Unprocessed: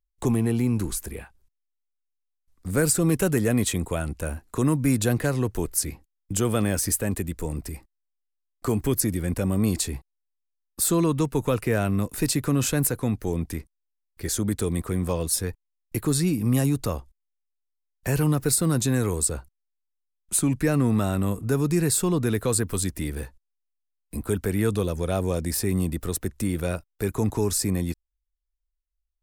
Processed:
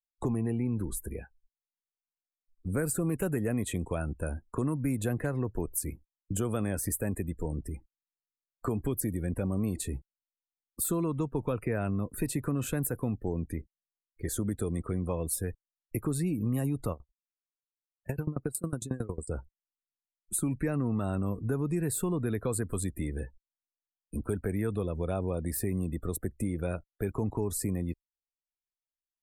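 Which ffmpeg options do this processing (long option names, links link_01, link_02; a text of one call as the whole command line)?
ffmpeg -i in.wav -filter_complex "[0:a]asplit=3[link_01][link_02][link_03];[link_01]afade=type=out:start_time=16.92:duration=0.02[link_04];[link_02]aeval=exprs='val(0)*pow(10,-25*if(lt(mod(11*n/s,1),2*abs(11)/1000),1-mod(11*n/s,1)/(2*abs(11)/1000),(mod(11*n/s,1)-2*abs(11)/1000)/(1-2*abs(11)/1000))/20)':channel_layout=same,afade=type=in:start_time=16.92:duration=0.02,afade=type=out:start_time=19.28:duration=0.02[link_05];[link_03]afade=type=in:start_time=19.28:duration=0.02[link_06];[link_04][link_05][link_06]amix=inputs=3:normalize=0,afftdn=noise_reduction=27:noise_floor=-40,equalizer=frequency=5200:width=1.2:gain=-13,acompressor=threshold=-26dB:ratio=3,volume=-2dB" out.wav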